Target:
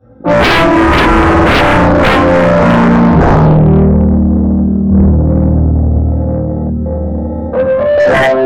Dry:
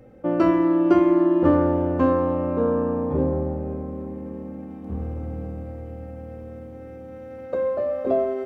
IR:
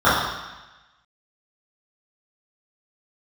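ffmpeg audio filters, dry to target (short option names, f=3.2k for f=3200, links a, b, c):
-filter_complex "[1:a]atrim=start_sample=2205,afade=t=out:st=0.22:d=0.01,atrim=end_sample=10143[a];[0:a][a]afir=irnorm=-1:irlink=0,afwtdn=0.562,asettb=1/sr,asplit=3[b][c][d];[b]atrim=end=5.964[e];[c]atrim=start=5.96:end=7.98,asetpts=PTS-STARTPTS,afade=t=in:d=0.004:c=qsin,afade=t=out:st=2.016:d=0.004:c=qsin,acrossover=split=310[f][g];[g]acompressor=threshold=-9dB:ratio=4[h];[f][h]amix=inputs=2:normalize=0[i];[d]atrim=start=7.976[j];[e][i]acrossfade=d=0.004:c1=hsin:c2=qsin[k];[k][j]acrossfade=d=0.004:c1=qsin:c2=hsin,flanger=delay=18:depth=3.9:speed=0.34,acontrast=64,lowshelf=f=270:g=4.5,volume=-5.5dB"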